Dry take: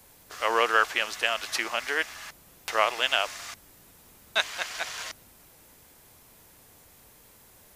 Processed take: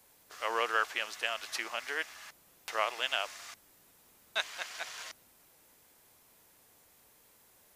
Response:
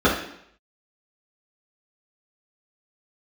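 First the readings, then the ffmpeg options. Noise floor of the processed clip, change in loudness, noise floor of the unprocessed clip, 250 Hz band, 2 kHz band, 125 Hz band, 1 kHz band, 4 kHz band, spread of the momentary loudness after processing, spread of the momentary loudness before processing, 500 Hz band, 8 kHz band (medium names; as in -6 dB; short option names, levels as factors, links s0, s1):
-64 dBFS, -8.0 dB, -56 dBFS, -10.0 dB, -7.5 dB, no reading, -8.0 dB, -7.5 dB, 19 LU, 19 LU, -8.5 dB, -7.5 dB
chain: -af "lowshelf=f=170:g=-10,volume=0.422"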